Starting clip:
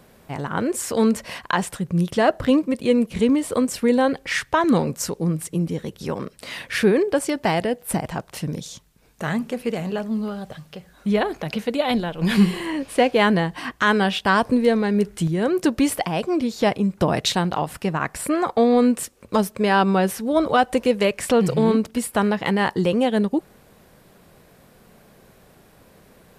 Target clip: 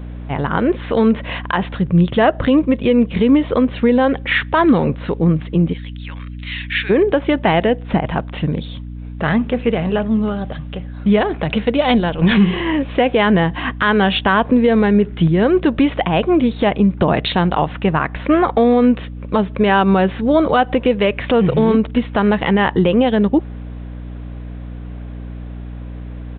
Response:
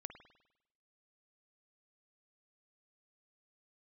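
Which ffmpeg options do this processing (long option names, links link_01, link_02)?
-filter_complex "[0:a]asplit=3[link_01][link_02][link_03];[link_01]afade=type=out:start_time=5.72:duration=0.02[link_04];[link_02]asuperpass=centerf=3100:order=4:qfactor=0.93,afade=type=in:start_time=5.72:duration=0.02,afade=type=out:start_time=6.89:duration=0.02[link_05];[link_03]afade=type=in:start_time=6.89:duration=0.02[link_06];[link_04][link_05][link_06]amix=inputs=3:normalize=0,aeval=exprs='val(0)+0.0158*(sin(2*PI*60*n/s)+sin(2*PI*2*60*n/s)/2+sin(2*PI*3*60*n/s)/3+sin(2*PI*4*60*n/s)/4+sin(2*PI*5*60*n/s)/5)':channel_layout=same,alimiter=limit=-12.5dB:level=0:latency=1:release=111,aresample=8000,aresample=44100,volume=8dB"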